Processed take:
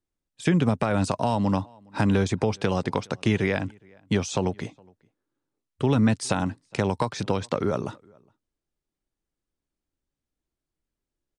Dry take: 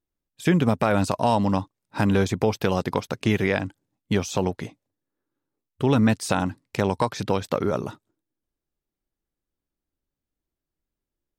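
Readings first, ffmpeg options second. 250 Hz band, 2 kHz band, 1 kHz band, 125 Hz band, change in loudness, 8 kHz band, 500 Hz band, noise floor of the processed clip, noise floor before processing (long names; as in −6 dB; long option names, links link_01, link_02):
−1.5 dB, −2.5 dB, −3.0 dB, −0.5 dB, −1.5 dB, −0.5 dB, −2.5 dB, below −85 dBFS, below −85 dBFS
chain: -filter_complex "[0:a]asplit=2[link_01][link_02];[link_02]adelay=414,volume=-30dB,highshelf=frequency=4000:gain=-9.32[link_03];[link_01][link_03]amix=inputs=2:normalize=0,acrossover=split=200[link_04][link_05];[link_05]acompressor=threshold=-21dB:ratio=6[link_06];[link_04][link_06]amix=inputs=2:normalize=0,aresample=22050,aresample=44100"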